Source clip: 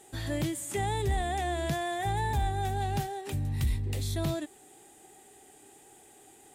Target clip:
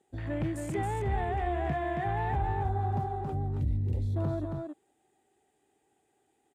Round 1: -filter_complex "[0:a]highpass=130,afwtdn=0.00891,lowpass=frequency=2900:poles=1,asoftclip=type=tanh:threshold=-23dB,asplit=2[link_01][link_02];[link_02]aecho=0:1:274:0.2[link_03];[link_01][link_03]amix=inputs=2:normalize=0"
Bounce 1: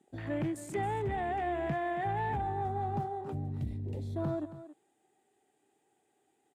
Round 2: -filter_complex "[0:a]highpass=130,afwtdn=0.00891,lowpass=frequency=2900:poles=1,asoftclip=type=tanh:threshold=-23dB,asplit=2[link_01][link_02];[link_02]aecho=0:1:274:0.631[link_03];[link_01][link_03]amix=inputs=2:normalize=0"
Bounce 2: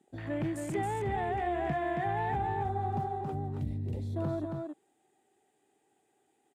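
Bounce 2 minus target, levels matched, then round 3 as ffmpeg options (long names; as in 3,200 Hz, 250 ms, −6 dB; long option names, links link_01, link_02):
125 Hz band −3.0 dB
-filter_complex "[0:a]highpass=34,afwtdn=0.00891,lowpass=frequency=2900:poles=1,asoftclip=type=tanh:threshold=-23dB,asplit=2[link_01][link_02];[link_02]aecho=0:1:274:0.631[link_03];[link_01][link_03]amix=inputs=2:normalize=0"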